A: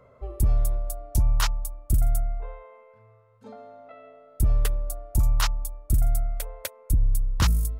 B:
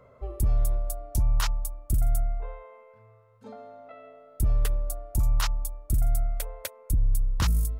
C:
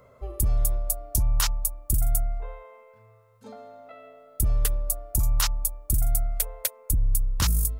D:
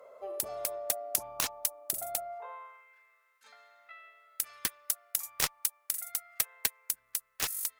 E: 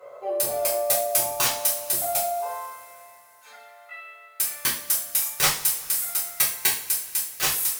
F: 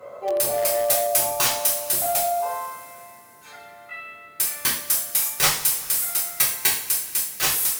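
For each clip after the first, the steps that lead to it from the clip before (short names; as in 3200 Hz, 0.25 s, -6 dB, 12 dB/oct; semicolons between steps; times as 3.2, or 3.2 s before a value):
limiter -17.5 dBFS, peak gain reduction 4.5 dB
high shelf 4600 Hz +12 dB
high-pass sweep 570 Hz -> 1800 Hz, 2.25–2.9; added harmonics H 7 -12 dB, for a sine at -6.5 dBFS
two-slope reverb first 0.42 s, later 3.5 s, from -22 dB, DRR -9.5 dB; gain +1 dB
band noise 82–460 Hz -65 dBFS; in parallel at -10 dB: wrapped overs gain 20.5 dB; on the sum: gain +1.5 dB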